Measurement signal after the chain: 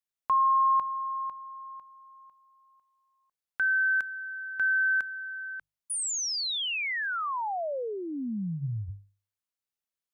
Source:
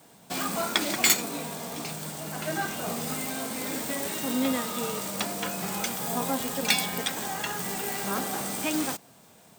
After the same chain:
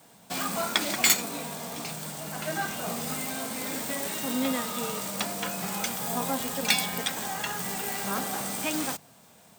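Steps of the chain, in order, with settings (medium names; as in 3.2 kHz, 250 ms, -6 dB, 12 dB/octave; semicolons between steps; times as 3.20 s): peaking EQ 350 Hz -4.5 dB 0.71 oct; hum notches 50/100/150 Hz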